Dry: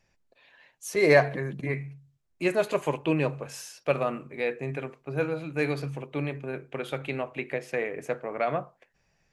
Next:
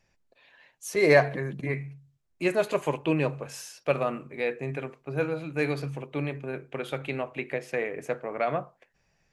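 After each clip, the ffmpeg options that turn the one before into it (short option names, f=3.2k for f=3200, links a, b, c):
-af anull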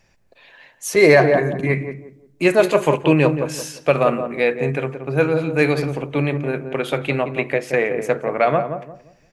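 -filter_complex "[0:a]asplit=2[a][b];[b]adelay=175,lowpass=f=820:p=1,volume=-6.5dB,asplit=2[c][d];[d]adelay=175,lowpass=f=820:p=1,volume=0.32,asplit=2[e][f];[f]adelay=175,lowpass=f=820:p=1,volume=0.32,asplit=2[g][h];[h]adelay=175,lowpass=f=820:p=1,volume=0.32[i];[c][e][g][i]amix=inputs=4:normalize=0[j];[a][j]amix=inputs=2:normalize=0,alimiter=level_in=11.5dB:limit=-1dB:release=50:level=0:latency=1,volume=-1dB"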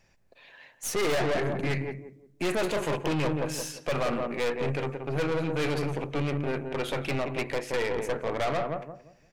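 -af "aeval=exprs='(tanh(14.1*val(0)+0.6)-tanh(0.6))/14.1':c=same,volume=-2dB"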